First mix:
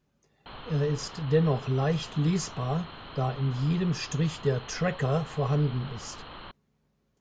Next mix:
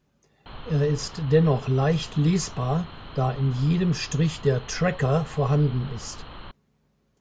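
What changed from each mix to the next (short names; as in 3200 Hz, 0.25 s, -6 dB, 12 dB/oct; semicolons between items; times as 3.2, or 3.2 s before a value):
speech +4.5 dB; background: add low shelf 160 Hz +9 dB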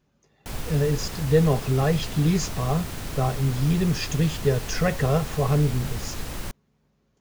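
background: remove rippled Chebyshev low-pass 4300 Hz, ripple 9 dB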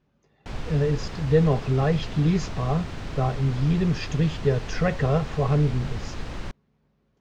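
master: add air absorption 140 m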